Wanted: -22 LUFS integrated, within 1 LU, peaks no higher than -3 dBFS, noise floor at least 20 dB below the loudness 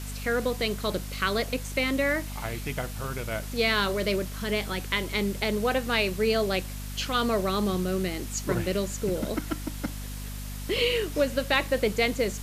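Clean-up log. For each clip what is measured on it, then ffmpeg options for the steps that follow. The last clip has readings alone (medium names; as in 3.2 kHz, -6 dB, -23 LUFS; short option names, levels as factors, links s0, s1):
hum 50 Hz; highest harmonic 250 Hz; hum level -34 dBFS; noise floor -36 dBFS; noise floor target -48 dBFS; loudness -28.0 LUFS; peak level -11.0 dBFS; loudness target -22.0 LUFS
-> -af "bandreject=f=50:t=h:w=4,bandreject=f=100:t=h:w=4,bandreject=f=150:t=h:w=4,bandreject=f=200:t=h:w=4,bandreject=f=250:t=h:w=4"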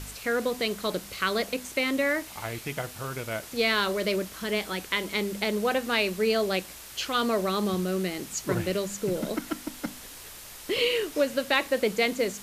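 hum not found; noise floor -44 dBFS; noise floor target -48 dBFS
-> -af "afftdn=nr=6:nf=-44"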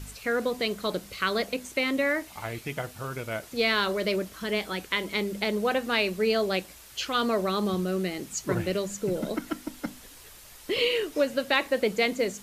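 noise floor -49 dBFS; loudness -28.0 LUFS; peak level -11.0 dBFS; loudness target -22.0 LUFS
-> -af "volume=2"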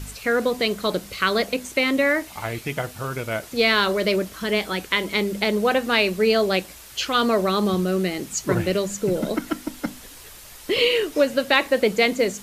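loudness -22.0 LUFS; peak level -5.0 dBFS; noise floor -43 dBFS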